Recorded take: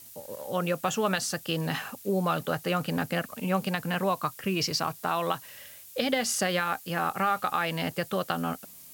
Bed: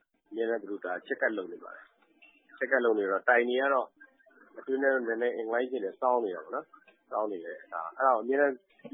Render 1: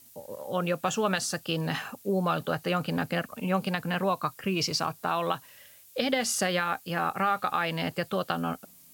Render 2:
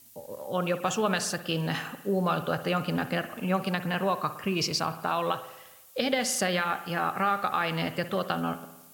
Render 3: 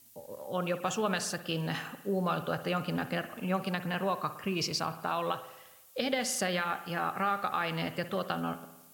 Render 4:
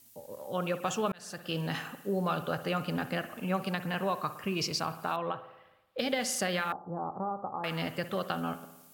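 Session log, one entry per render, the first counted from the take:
noise print and reduce 6 dB
spring tank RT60 1 s, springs 55 ms, chirp 35 ms, DRR 11 dB
gain -4 dB
1.12–1.56 fade in linear; 5.16–5.99 air absorption 440 m; 6.72–7.64 elliptic low-pass 1000 Hz, stop band 60 dB

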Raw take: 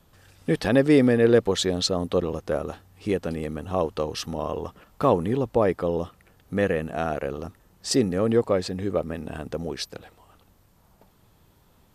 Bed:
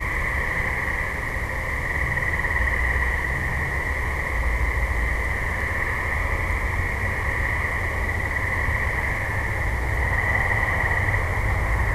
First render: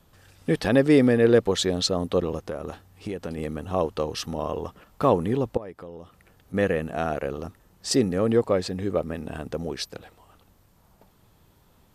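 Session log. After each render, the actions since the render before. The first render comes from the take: 2.42–3.38 compressor, threshold -27 dBFS; 5.57–6.54 compressor 2.5:1, threshold -44 dBFS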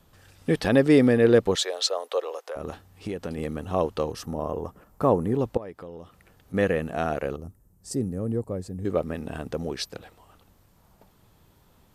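1.55–2.56 steep high-pass 470 Hz; 4.12–5.39 bell 3300 Hz -12 dB 1.7 oct; 7.36–8.85 EQ curve 110 Hz 0 dB, 2100 Hz -20 dB, 3500 Hz -23 dB, 8700 Hz -4 dB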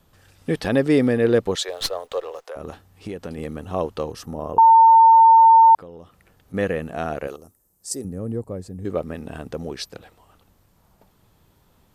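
1.68–2.45 running maximum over 3 samples; 4.58–5.75 bleep 904 Hz -7.5 dBFS; 7.27–8.05 tone controls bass -14 dB, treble +9 dB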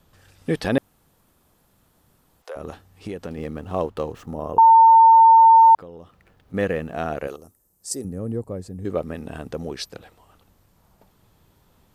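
0.78–2.42 room tone; 3.26–4.34 median filter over 9 samples; 5.56–7.17 median filter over 5 samples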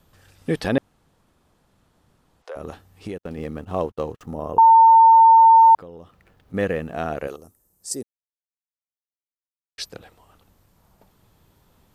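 0.72–2.55 air absorption 54 m; 3.18–4.21 gate -37 dBFS, range -46 dB; 8.03–9.78 mute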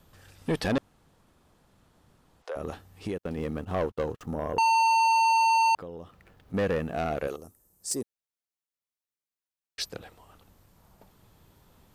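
soft clip -21 dBFS, distortion -7 dB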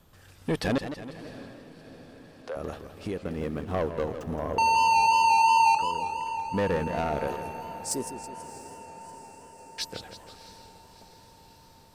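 diffused feedback echo 0.676 s, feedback 64%, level -15.5 dB; warbling echo 0.163 s, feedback 56%, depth 180 cents, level -10 dB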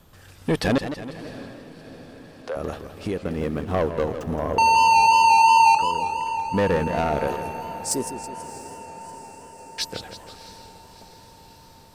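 gain +5.5 dB

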